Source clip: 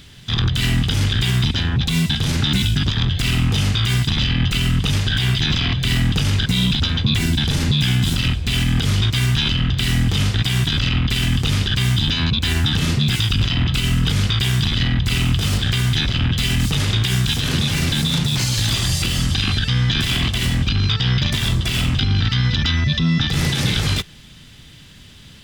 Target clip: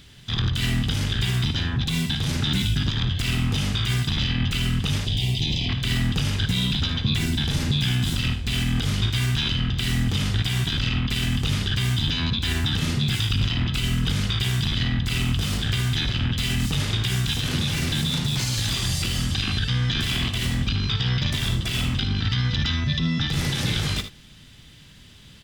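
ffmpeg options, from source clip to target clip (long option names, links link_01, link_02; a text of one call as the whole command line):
ffmpeg -i in.wav -filter_complex "[0:a]asettb=1/sr,asplit=3[link_01][link_02][link_03];[link_01]atrim=end=5.054[link_04];[link_02]atrim=start=5.05:end=5.69,asetpts=PTS-STARTPTS,afade=type=in:duration=0.004:curve=qsin,afade=type=out:start_time=0.636:duration=0.004:curve=qsin,asuperstop=centerf=1400:order=4:qfactor=0.87[link_05];[link_03]atrim=start=5.686[link_06];[link_04][link_05]acrossfade=duration=0.004:curve1=hsin:curve2=qsin[link_07];[link_07][link_06]acrossfade=duration=0.004:curve1=qsin:curve2=hsin,asplit=2[link_08][link_09];[link_09]aecho=0:1:57|77:0.251|0.237[link_10];[link_08][link_10]amix=inputs=2:normalize=0,volume=-5.5dB" out.wav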